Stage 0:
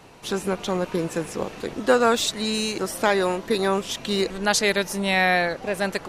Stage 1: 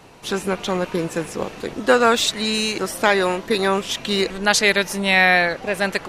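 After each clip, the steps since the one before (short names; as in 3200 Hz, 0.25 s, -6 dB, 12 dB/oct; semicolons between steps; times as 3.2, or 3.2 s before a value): dynamic EQ 2300 Hz, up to +5 dB, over -36 dBFS, Q 0.76; gain +2 dB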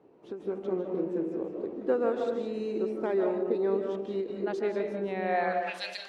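band-pass sweep 360 Hz -> 4100 Hz, 5.23–5.79; digital reverb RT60 0.96 s, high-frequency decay 0.25×, pre-delay 0.12 s, DRR 3 dB; ending taper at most 150 dB/s; gain -5 dB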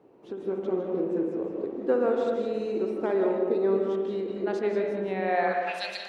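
spring tank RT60 1.3 s, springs 57 ms, chirp 65 ms, DRR 5.5 dB; gain +2 dB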